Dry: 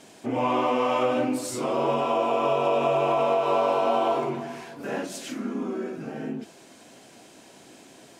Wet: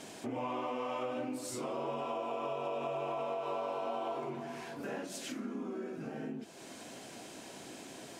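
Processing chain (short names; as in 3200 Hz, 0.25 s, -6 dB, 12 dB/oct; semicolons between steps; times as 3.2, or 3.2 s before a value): compressor 2.5:1, threshold -45 dBFS, peak gain reduction 17 dB; gain +2 dB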